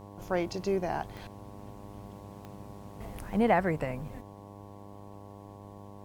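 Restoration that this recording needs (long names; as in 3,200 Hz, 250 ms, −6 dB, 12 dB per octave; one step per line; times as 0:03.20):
click removal
hum removal 100.9 Hz, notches 11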